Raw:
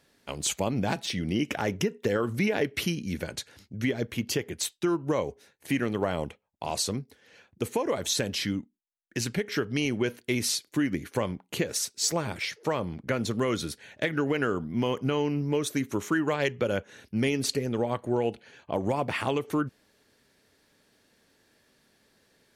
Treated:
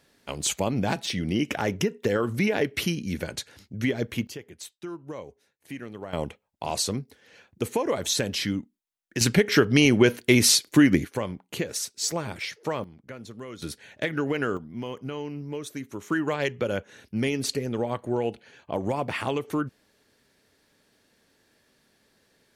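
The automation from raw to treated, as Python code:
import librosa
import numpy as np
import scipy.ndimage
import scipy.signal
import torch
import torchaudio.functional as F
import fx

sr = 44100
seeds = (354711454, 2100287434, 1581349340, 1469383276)

y = fx.gain(x, sr, db=fx.steps((0.0, 2.0), (4.27, -10.5), (6.13, 2.0), (9.21, 9.5), (11.05, -1.0), (12.84, -12.5), (13.62, 0.0), (14.57, -7.0), (16.1, 0.0)))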